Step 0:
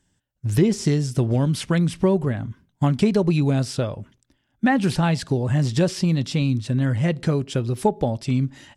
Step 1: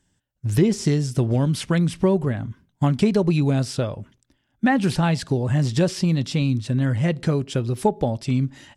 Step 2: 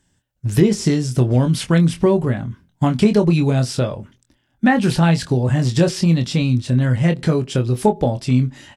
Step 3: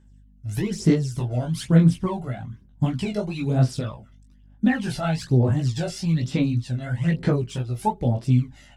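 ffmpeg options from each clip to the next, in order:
-af anull
-filter_complex "[0:a]asplit=2[s0][s1];[s1]adelay=24,volume=0.422[s2];[s0][s2]amix=inputs=2:normalize=0,volume=1.5"
-af "aphaser=in_gain=1:out_gain=1:delay=1.5:decay=0.69:speed=1.1:type=sinusoidal,aeval=exprs='val(0)+0.00891*(sin(2*PI*50*n/s)+sin(2*PI*2*50*n/s)/2+sin(2*PI*3*50*n/s)/3+sin(2*PI*4*50*n/s)/4+sin(2*PI*5*50*n/s)/5)':c=same,flanger=delay=15:depth=4.5:speed=3,volume=0.398"

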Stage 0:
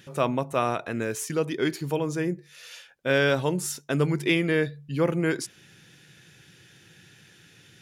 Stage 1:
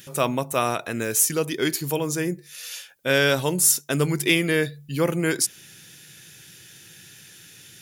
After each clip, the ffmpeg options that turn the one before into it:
-af "aemphasis=mode=production:type=75fm,volume=1.26"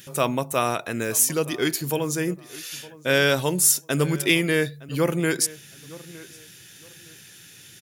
-filter_complex "[0:a]asplit=2[s0][s1];[s1]adelay=913,lowpass=f=2600:p=1,volume=0.106,asplit=2[s2][s3];[s3]adelay=913,lowpass=f=2600:p=1,volume=0.27[s4];[s0][s2][s4]amix=inputs=3:normalize=0"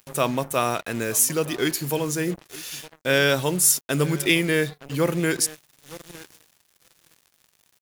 -af "acrusher=bits=5:mix=0:aa=0.5"

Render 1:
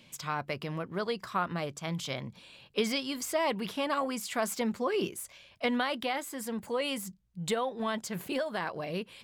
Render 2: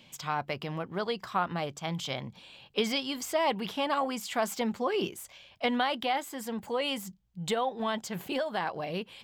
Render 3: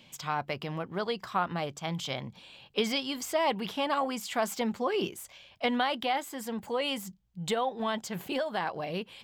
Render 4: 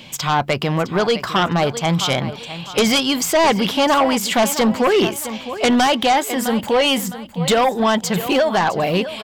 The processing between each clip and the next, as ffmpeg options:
-af "equalizer=f=800:t=o:w=0.33:g=7,equalizer=f=3150:t=o:w=0.33:g=4,equalizer=f=10000:t=o:w=0.33:g=-7"
-af anull
-af "aecho=1:1:660|1320|1980:0.178|0.0569|0.0182,aeval=exprs='0.188*sin(PI/2*2.82*val(0)/0.188)':c=same,volume=1.58"

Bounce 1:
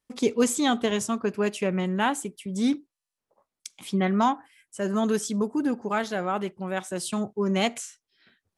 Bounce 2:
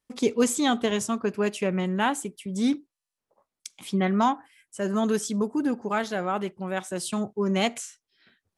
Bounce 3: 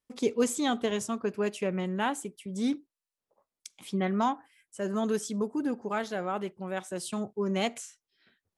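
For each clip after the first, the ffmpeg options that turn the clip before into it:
-af anull
-af "equalizer=f=480:w=1.5:g=2.5,volume=0.531"

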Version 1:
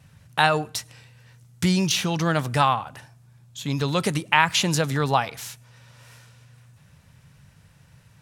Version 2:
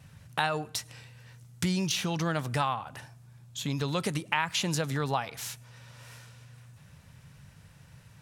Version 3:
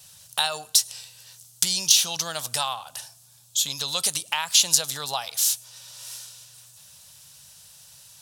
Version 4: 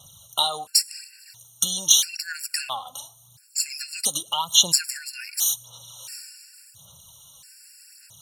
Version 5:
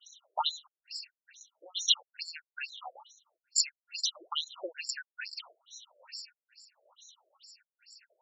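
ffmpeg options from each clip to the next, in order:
-af "acompressor=threshold=0.0251:ratio=2"
-af "lowshelf=f=460:t=q:w=1.5:g=-9.5,aexciter=amount=5.1:drive=8.1:freq=3100,volume=0.794"
-af "aphaser=in_gain=1:out_gain=1:delay=4:decay=0.53:speed=0.87:type=sinusoidal,afftfilt=real='re*gt(sin(2*PI*0.74*pts/sr)*(1-2*mod(floor(b*sr/1024/1400),2)),0)':imag='im*gt(sin(2*PI*0.74*pts/sr)*(1-2*mod(floor(b*sr/1024/1400),2)),0)':win_size=1024:overlap=0.75,volume=1.19"
-af "afftfilt=real='re*between(b*sr/1024,460*pow(5600/460,0.5+0.5*sin(2*PI*2.3*pts/sr))/1.41,460*pow(5600/460,0.5+0.5*sin(2*PI*2.3*pts/sr))*1.41)':imag='im*between(b*sr/1024,460*pow(5600/460,0.5+0.5*sin(2*PI*2.3*pts/sr))/1.41,460*pow(5600/460,0.5+0.5*sin(2*PI*2.3*pts/sr))*1.41)':win_size=1024:overlap=0.75"

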